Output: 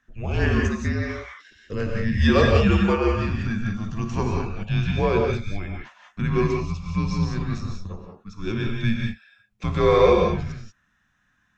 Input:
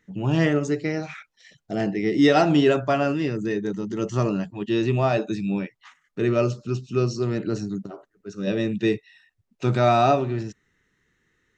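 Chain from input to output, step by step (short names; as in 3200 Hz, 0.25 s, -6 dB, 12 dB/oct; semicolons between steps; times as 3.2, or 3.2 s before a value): tone controls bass -6 dB, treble -4 dB; non-linear reverb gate 0.21 s rising, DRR 0.5 dB; frequency shift -210 Hz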